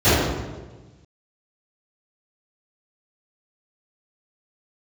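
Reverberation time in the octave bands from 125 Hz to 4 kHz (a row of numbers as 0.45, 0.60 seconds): 1.7, 1.5, 1.4, 1.2, 1.0, 0.90 seconds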